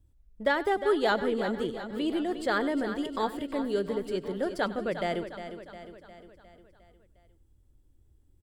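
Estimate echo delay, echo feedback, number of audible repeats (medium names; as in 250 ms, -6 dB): 97 ms, no regular repeats, 8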